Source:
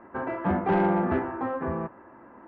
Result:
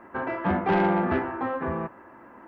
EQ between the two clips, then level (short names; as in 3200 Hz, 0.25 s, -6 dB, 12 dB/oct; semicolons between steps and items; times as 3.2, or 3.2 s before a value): high shelf 2300 Hz +11.5 dB; 0.0 dB